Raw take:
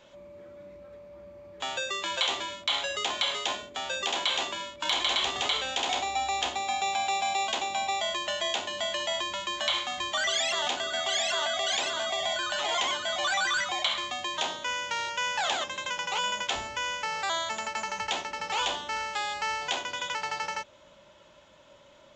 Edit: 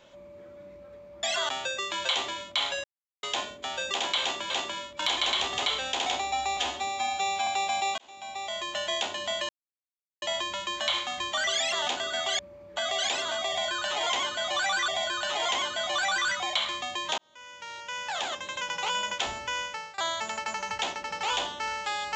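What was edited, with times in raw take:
0:01.23–0:01.61: swap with 0:11.19–0:11.45
0:02.96–0:03.35: silence
0:04.33–0:04.62: repeat, 2 plays
0:06.40–0:07.00: time-stretch 1.5×
0:07.51–0:08.39: fade in
0:09.02: splice in silence 0.73 s
0:12.17–0:13.56: repeat, 2 plays
0:14.47–0:15.98: fade in
0:16.88–0:17.27: fade out linear, to −23 dB

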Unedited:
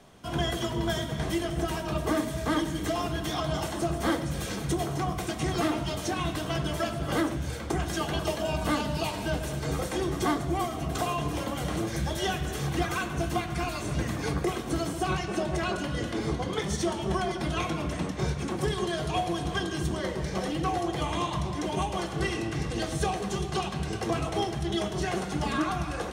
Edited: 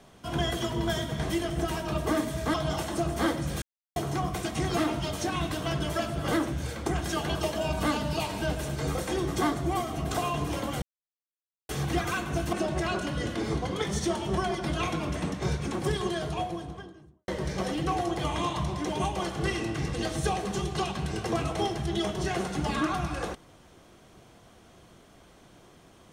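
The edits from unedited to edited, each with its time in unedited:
0:02.54–0:03.38: remove
0:04.46–0:04.80: silence
0:11.66–0:12.53: silence
0:13.37–0:15.30: remove
0:18.71–0:20.05: fade out and dull

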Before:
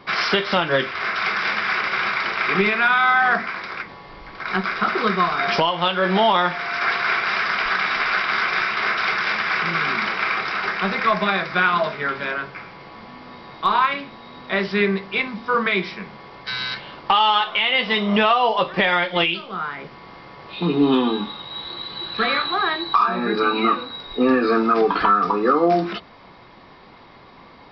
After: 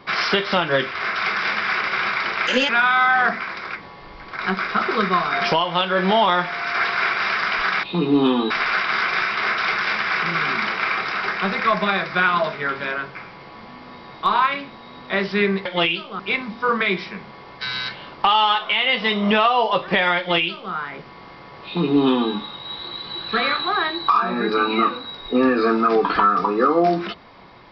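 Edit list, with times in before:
0:02.47–0:02.76: play speed 130%
0:19.04–0:19.58: duplicate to 0:15.05
0:20.51–0:21.18: duplicate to 0:07.90

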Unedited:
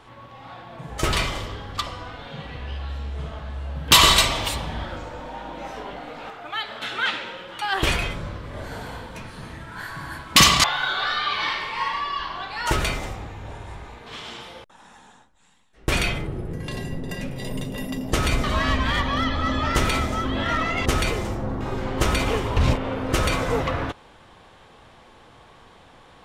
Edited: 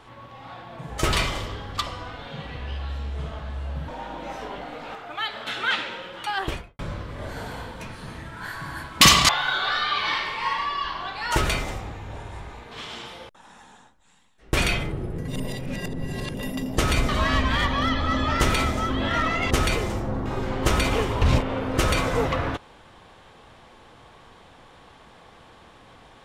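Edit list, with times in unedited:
0:03.88–0:05.23: remove
0:07.56–0:08.14: fade out and dull
0:16.63–0:17.69: reverse

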